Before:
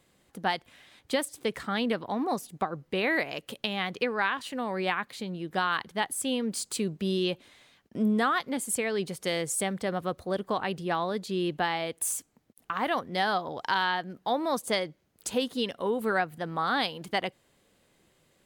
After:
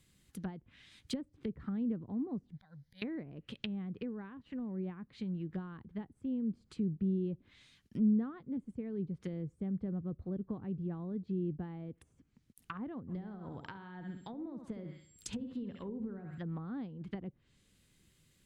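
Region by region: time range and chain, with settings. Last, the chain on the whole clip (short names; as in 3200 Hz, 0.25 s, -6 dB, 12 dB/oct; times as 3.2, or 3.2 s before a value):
2.52–3.02 high shelf 4400 Hz +5 dB + auto swell 0.395 s + fixed phaser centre 1800 Hz, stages 8
13.07–16.38 compressor 5:1, threshold -29 dBFS + whine 7500 Hz -57 dBFS + flutter echo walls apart 11.4 m, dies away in 0.49 s
whole clip: low shelf 380 Hz +3 dB; treble ducked by the level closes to 470 Hz, closed at -27.5 dBFS; passive tone stack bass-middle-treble 6-0-2; gain +13.5 dB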